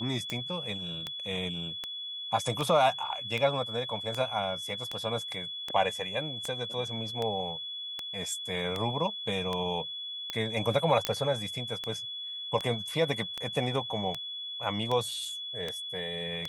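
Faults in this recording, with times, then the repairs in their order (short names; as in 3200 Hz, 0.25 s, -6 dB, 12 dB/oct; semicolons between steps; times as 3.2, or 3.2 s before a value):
tick 78 rpm -18 dBFS
tone 3400 Hz -36 dBFS
11.05 pop -9 dBFS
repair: de-click; notch 3400 Hz, Q 30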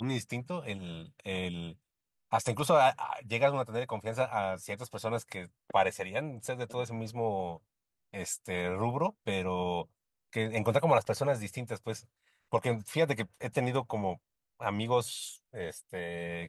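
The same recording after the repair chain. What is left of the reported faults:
11.05 pop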